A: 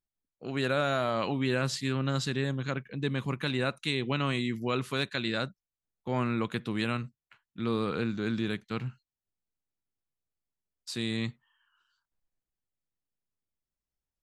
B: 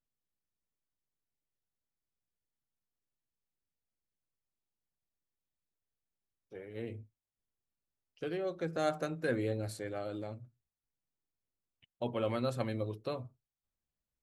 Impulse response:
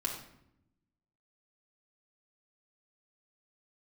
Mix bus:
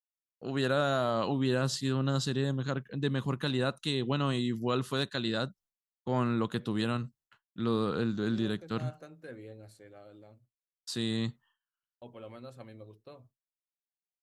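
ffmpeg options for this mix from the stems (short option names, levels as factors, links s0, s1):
-filter_complex "[0:a]equalizer=f=2300:t=o:w=0.24:g=-13,volume=1.06[s0];[1:a]volume=0.224[s1];[s0][s1]amix=inputs=2:normalize=0,agate=range=0.0224:threshold=0.00141:ratio=3:detection=peak,adynamicequalizer=threshold=0.00398:dfrequency=1900:dqfactor=1.4:tfrequency=1900:tqfactor=1.4:attack=5:release=100:ratio=0.375:range=2.5:mode=cutabove:tftype=bell"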